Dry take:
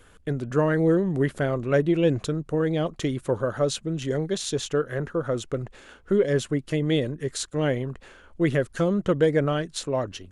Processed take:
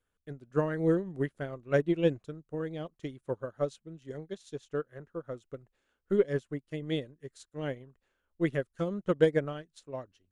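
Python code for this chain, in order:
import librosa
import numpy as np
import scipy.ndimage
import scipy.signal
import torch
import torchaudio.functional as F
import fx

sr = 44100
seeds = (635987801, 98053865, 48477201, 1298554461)

y = fx.upward_expand(x, sr, threshold_db=-34.0, expansion=2.5)
y = y * librosa.db_to_amplitude(-1.5)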